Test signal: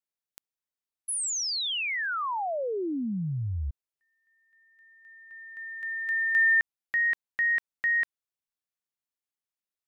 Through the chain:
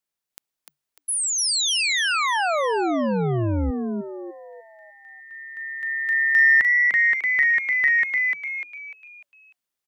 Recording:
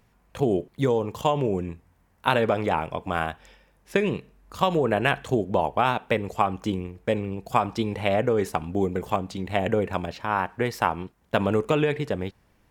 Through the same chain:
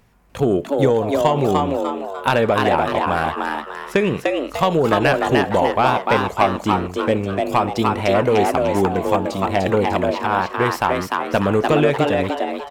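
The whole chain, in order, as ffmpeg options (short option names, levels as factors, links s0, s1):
-filter_complex "[0:a]aeval=exprs='0.668*(cos(1*acos(clip(val(0)/0.668,-1,1)))-cos(1*PI/2))+0.0944*(cos(5*acos(clip(val(0)/0.668,-1,1)))-cos(5*PI/2))':c=same,asplit=6[s0][s1][s2][s3][s4][s5];[s1]adelay=298,afreqshift=140,volume=0.708[s6];[s2]adelay=596,afreqshift=280,volume=0.292[s7];[s3]adelay=894,afreqshift=420,volume=0.119[s8];[s4]adelay=1192,afreqshift=560,volume=0.049[s9];[s5]adelay=1490,afreqshift=700,volume=0.02[s10];[s0][s6][s7][s8][s9][s10]amix=inputs=6:normalize=0,volume=1.19"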